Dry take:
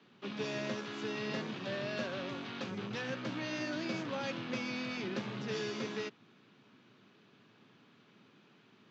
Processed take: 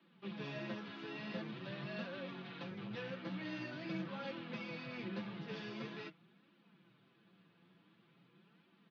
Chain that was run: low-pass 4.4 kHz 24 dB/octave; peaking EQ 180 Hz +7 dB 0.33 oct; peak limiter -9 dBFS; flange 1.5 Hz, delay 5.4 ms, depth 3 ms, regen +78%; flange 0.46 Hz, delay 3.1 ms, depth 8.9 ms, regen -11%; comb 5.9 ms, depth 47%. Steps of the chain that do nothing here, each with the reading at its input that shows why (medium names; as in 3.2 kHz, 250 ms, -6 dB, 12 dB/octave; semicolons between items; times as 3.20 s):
peak limiter -9 dBFS: peak at its input -23.0 dBFS